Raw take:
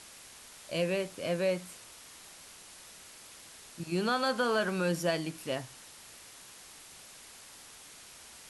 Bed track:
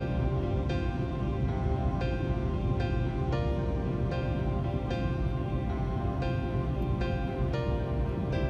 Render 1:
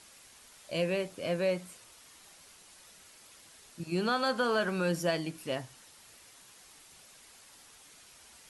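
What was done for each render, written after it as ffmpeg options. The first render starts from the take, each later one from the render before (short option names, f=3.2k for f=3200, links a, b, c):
-af "afftdn=nr=6:nf=-52"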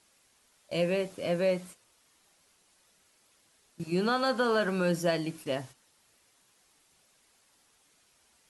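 -af "agate=range=-11dB:threshold=-47dB:ratio=16:detection=peak,equalizer=f=320:w=0.39:g=3"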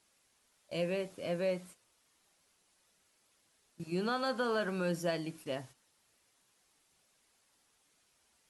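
-af "volume=-6dB"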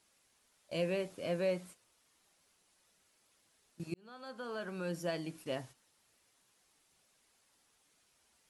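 -filter_complex "[0:a]asplit=2[a][b];[a]atrim=end=3.94,asetpts=PTS-STARTPTS,afade=t=out:st=3.936:d=0.004:c=hsin[c];[b]atrim=start=3.94,asetpts=PTS-STARTPTS,afade=t=in:d=1.63[d];[c][d]concat=n=2:v=0:a=1"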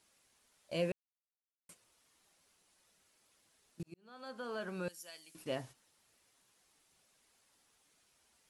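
-filter_complex "[0:a]asettb=1/sr,asplit=3[a][b][c];[a]atrim=end=4.884[d];[b]atrim=start=4.88:end=5.35,asetpts=PTS-STARTPTS,afade=t=in:d=0.004:c=qsin,afade=t=out:st=0.466:d=0.004:c=qsin,aderivative[e];[c]atrim=start=5.346[f];[d][e]acrossfade=d=0.004:c1=hsin:c2=qsin[g];[g][f]acrossfade=d=0.004:c1=qsin:c2=hsin,asplit=4[h][i][j][k];[h]atrim=end=0.92,asetpts=PTS-STARTPTS,afade=t=out:st=0.916:d=0.004:c=hsin[l];[i]atrim=start=0.92:end=1.69,asetpts=PTS-STARTPTS,volume=0[m];[j]atrim=start=1.69:end=3.83,asetpts=PTS-STARTPTS,afade=t=in:d=0.004:c=hsin,afade=t=out:st=2.136:d=0.004:c=hsin[n];[k]atrim=start=3.83,asetpts=PTS-STARTPTS,afade=t=in:d=0.41[o];[l][m][n][o]concat=n=4:v=0:a=1"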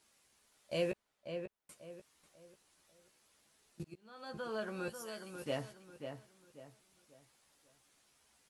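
-filter_complex "[0:a]asplit=2[a][b];[b]adelay=14,volume=-6.5dB[c];[a][c]amix=inputs=2:normalize=0,asplit=2[d][e];[e]adelay=541,lowpass=f=2.5k:p=1,volume=-7dB,asplit=2[f][g];[g]adelay=541,lowpass=f=2.5k:p=1,volume=0.34,asplit=2[h][i];[i]adelay=541,lowpass=f=2.5k:p=1,volume=0.34,asplit=2[j][k];[k]adelay=541,lowpass=f=2.5k:p=1,volume=0.34[l];[d][f][h][j][l]amix=inputs=5:normalize=0"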